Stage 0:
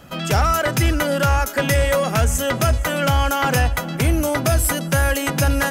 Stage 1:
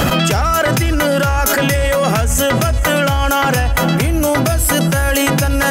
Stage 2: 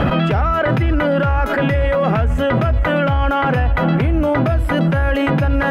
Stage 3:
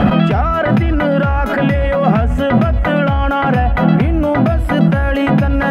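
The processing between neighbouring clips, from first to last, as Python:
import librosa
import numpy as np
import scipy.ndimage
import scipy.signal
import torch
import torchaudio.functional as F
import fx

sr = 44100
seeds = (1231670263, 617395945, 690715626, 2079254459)

y1 = fx.env_flatten(x, sr, amount_pct=100)
y2 = fx.air_absorb(y1, sr, metres=480.0)
y3 = fx.small_body(y2, sr, hz=(210.0, 720.0), ring_ms=95, db=12)
y3 = F.gain(torch.from_numpy(y3), 1.0).numpy()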